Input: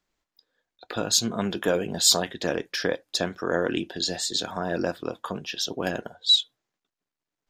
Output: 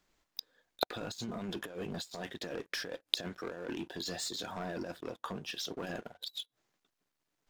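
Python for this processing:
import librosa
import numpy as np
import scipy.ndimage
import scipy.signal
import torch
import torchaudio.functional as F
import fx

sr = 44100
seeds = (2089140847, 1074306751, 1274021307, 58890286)

y = fx.over_compress(x, sr, threshold_db=-28.0, ratio=-0.5)
y = fx.leveller(y, sr, passes=3)
y = fx.gate_flip(y, sr, shuts_db=-24.0, range_db=-27)
y = F.gain(torch.from_numpy(y), 7.0).numpy()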